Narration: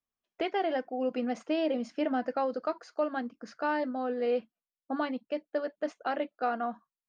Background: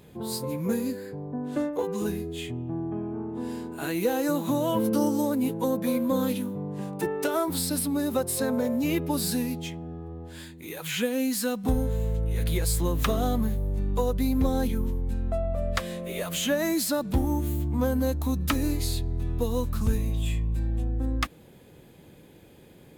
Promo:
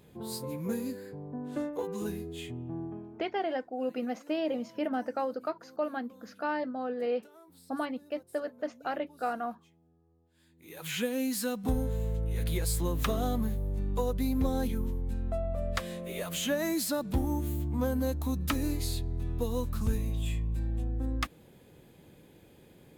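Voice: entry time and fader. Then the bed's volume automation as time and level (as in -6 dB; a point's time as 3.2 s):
2.80 s, -2.0 dB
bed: 2.84 s -6 dB
3.57 s -29.5 dB
10.31 s -29.5 dB
10.84 s -4.5 dB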